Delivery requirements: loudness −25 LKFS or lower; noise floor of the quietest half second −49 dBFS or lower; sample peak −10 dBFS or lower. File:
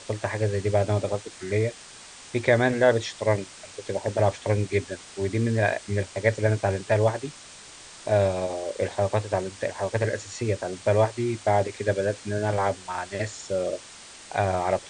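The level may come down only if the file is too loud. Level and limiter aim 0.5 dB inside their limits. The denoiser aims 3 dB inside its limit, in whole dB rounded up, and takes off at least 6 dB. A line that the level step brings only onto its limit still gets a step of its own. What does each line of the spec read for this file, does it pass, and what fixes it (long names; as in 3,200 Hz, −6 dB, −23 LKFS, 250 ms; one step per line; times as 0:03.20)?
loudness −26.0 LKFS: in spec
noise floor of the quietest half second −46 dBFS: out of spec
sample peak −7.0 dBFS: out of spec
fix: broadband denoise 6 dB, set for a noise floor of −46 dBFS
brickwall limiter −10.5 dBFS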